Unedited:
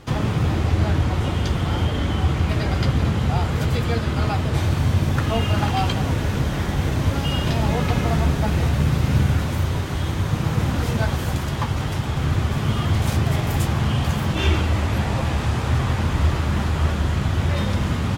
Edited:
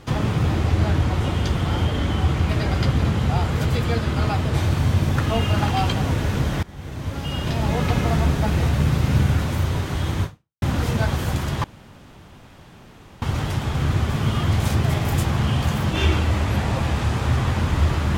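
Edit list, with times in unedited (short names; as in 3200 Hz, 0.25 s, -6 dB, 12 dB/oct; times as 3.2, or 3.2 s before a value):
6.63–7.87 fade in, from -21.5 dB
10.24–10.62 fade out exponential
11.64 insert room tone 1.58 s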